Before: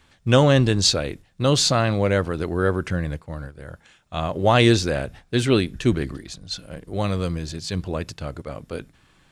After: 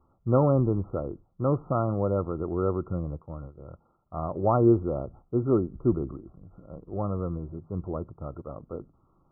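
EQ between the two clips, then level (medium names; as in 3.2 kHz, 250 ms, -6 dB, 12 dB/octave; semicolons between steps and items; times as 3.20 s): brick-wall FIR low-pass 1.4 kHz; peaking EQ 350 Hz +5 dB 0.21 oct; -6.0 dB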